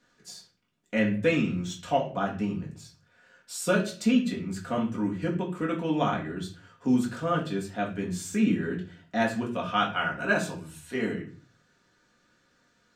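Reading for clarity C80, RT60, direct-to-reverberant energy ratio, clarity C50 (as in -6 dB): 14.5 dB, 0.40 s, -2.5 dB, 10.5 dB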